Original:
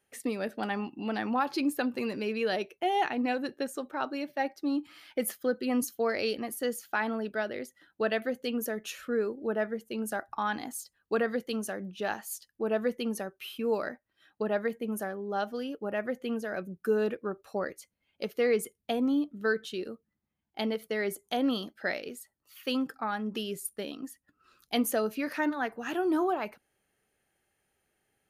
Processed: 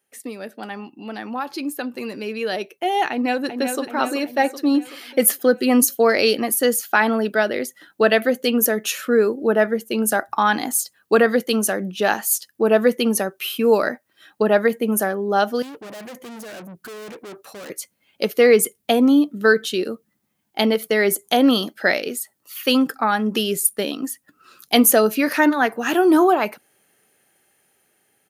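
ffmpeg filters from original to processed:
ffmpeg -i in.wav -filter_complex "[0:a]asplit=2[link_01][link_02];[link_02]afade=type=in:start_time=3.11:duration=0.01,afade=type=out:start_time=3.81:duration=0.01,aecho=0:1:380|760|1140|1520|1900|2280:0.398107|0.199054|0.0995268|0.0497634|0.0248817|0.0124408[link_03];[link_01][link_03]amix=inputs=2:normalize=0,asettb=1/sr,asplit=3[link_04][link_05][link_06];[link_04]atrim=end=15.624[link_07];[link_05]atrim=start=15.62:end=17.7,asetpts=PTS-STARTPTS,afade=type=in:duration=0.004:curve=qsin,afade=type=out:start_time=2.076:duration=0.004:curve=qsin,aeval=exprs='(tanh(251*val(0)+0.4)-tanh(0.4))/251':channel_layout=same[link_08];[link_06]atrim=start=17.696[link_09];[link_07][link_08]acrossfade=duration=0.004:curve1=hsin:curve2=qsin[link_10];[link_10][link_09]acrossfade=duration=0.004:curve1=qsin:curve2=hsin,dynaudnorm=framelen=610:gausssize=11:maxgain=14dB,highpass=150,highshelf=frequency=7100:gain=8" out.wav

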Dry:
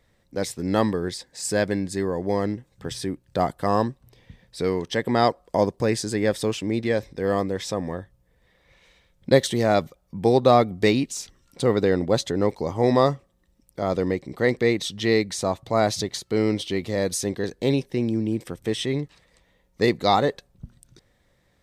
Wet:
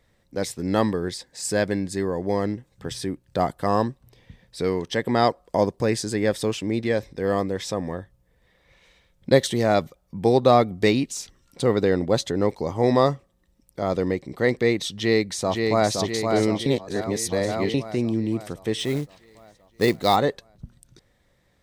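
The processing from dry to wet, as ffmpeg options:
ffmpeg -i in.wav -filter_complex "[0:a]asplit=2[link_01][link_02];[link_02]afade=type=in:start_time=14.94:duration=0.01,afade=type=out:start_time=15.92:duration=0.01,aecho=0:1:520|1040|1560|2080|2600|3120|3640|4160|4680:0.630957|0.378574|0.227145|0.136287|0.0817721|0.0490632|0.0294379|0.0176628|0.0105977[link_03];[link_01][link_03]amix=inputs=2:normalize=0,asplit=3[link_04][link_05][link_06];[link_04]afade=type=out:start_time=18.78:duration=0.02[link_07];[link_05]acrusher=bits=5:mode=log:mix=0:aa=0.000001,afade=type=in:start_time=18.78:duration=0.02,afade=type=out:start_time=20.15:duration=0.02[link_08];[link_06]afade=type=in:start_time=20.15:duration=0.02[link_09];[link_07][link_08][link_09]amix=inputs=3:normalize=0,asplit=3[link_10][link_11][link_12];[link_10]atrim=end=16.662[link_13];[link_11]atrim=start=16.658:end=17.742,asetpts=PTS-STARTPTS,areverse[link_14];[link_12]atrim=start=17.738[link_15];[link_13][link_14]acrossfade=duration=0.004:curve1=hsin:curve2=hsin[link_16];[link_16][link_15]acrossfade=duration=0.004:curve1=hsin:curve2=hsin" out.wav

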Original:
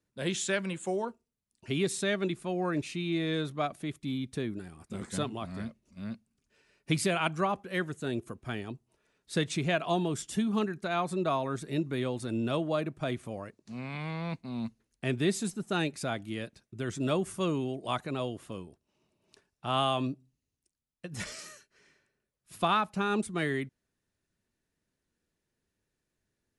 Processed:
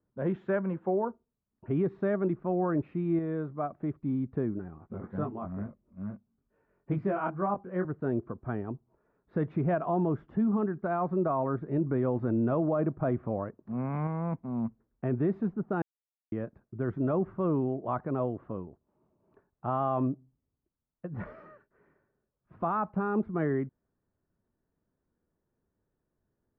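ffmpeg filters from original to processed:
ffmpeg -i in.wav -filter_complex "[0:a]asettb=1/sr,asplit=3[link_01][link_02][link_03];[link_01]atrim=end=4.784[link_04];[link_02]atrim=start=4.78:end=7.85,asetpts=PTS-STARTPTS,afade=type=in:duration=0.004:curve=qsin,afade=type=out:start_time=3.066:duration=0.004:curve=qsin,flanger=delay=19.5:depth=2.9:speed=2.2[link_05];[link_03]atrim=start=7.846[link_06];[link_04][link_05]acrossfade=duration=0.004:curve1=hsin:curve2=qsin[link_07];[link_07][link_06]acrossfade=duration=0.004:curve1=qsin:curve2=hsin,asplit=7[link_08][link_09][link_10][link_11][link_12][link_13][link_14];[link_08]atrim=end=3.192[link_15];[link_09]atrim=start=3.188:end=3.802,asetpts=PTS-STARTPTS,volume=-4.5dB[link_16];[link_10]atrim=start=3.798:end=11.782[link_17];[link_11]atrim=start=11.778:end=14.072,asetpts=PTS-STARTPTS,volume=3.5dB[link_18];[link_12]atrim=start=14.068:end=15.82,asetpts=PTS-STARTPTS,afade=type=out:start_time=1.748:duration=0.004:curve=hsin[link_19];[link_13]atrim=start=15.82:end=16.32,asetpts=PTS-STARTPTS,volume=0[link_20];[link_14]atrim=start=16.32,asetpts=PTS-STARTPTS,afade=type=in:duration=0.004:curve=hsin[link_21];[link_15][link_16]acrossfade=duration=0.004:curve1=hsin:curve2=hsin[link_22];[link_22][link_17]acrossfade=duration=0.004:curve1=hsin:curve2=hsin[link_23];[link_23][link_18]acrossfade=duration=0.004:curve1=hsin:curve2=hsin[link_24];[link_19][link_20][link_21]concat=n=3:v=0:a=1[link_25];[link_24][link_25]acrossfade=duration=0.004:curve1=hsin:curve2=hsin,lowpass=frequency=1300:width=0.5412,lowpass=frequency=1300:width=1.3066,alimiter=limit=-23.5dB:level=0:latency=1:release=24,volume=3.5dB" out.wav

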